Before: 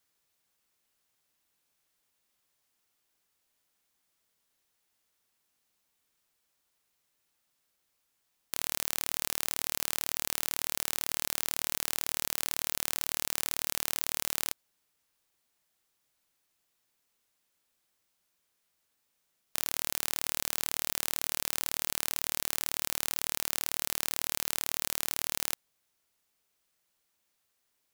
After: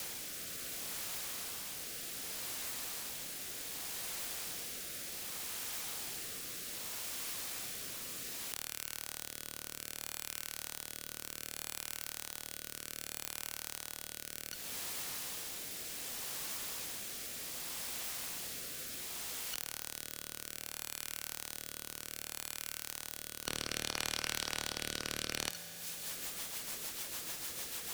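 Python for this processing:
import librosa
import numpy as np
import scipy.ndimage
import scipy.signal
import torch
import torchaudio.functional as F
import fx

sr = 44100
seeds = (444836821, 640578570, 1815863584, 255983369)

y = fx.band_shuffle(x, sr, order='2413')
y = fx.high_shelf(y, sr, hz=2800.0, db=-10.5, at=(23.47, 25.49))
y = fx.over_compress(y, sr, threshold_db=-48.0, ratio=-0.5)
y = 10.0 ** (-26.5 / 20.0) * (np.abs((y / 10.0 ** (-26.5 / 20.0) + 3.0) % 4.0 - 2.0) - 1.0)
y = fx.rotary_switch(y, sr, hz=0.65, then_hz=6.7, switch_at_s=25.33)
y = fx.rev_fdn(y, sr, rt60_s=1.8, lf_ratio=1.2, hf_ratio=0.95, size_ms=12.0, drr_db=11.0)
y = fx.band_squash(y, sr, depth_pct=70)
y = y * 10.0 ** (17.0 / 20.0)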